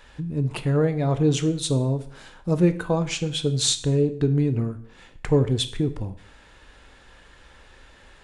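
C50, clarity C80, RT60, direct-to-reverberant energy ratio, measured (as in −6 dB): 14.5 dB, 17.5 dB, 0.60 s, 9.5 dB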